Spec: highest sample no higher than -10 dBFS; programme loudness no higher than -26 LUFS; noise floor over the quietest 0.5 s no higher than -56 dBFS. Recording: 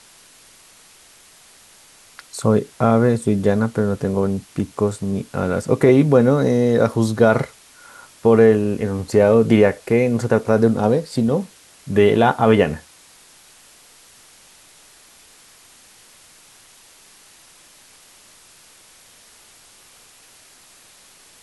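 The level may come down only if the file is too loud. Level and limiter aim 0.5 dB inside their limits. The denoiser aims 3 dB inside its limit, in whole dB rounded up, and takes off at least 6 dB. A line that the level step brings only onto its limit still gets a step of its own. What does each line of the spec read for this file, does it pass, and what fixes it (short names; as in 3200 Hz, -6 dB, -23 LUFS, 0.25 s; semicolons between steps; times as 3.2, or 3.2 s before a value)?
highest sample -2.0 dBFS: fail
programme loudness -17.5 LUFS: fail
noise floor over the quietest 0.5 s -49 dBFS: fail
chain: gain -9 dB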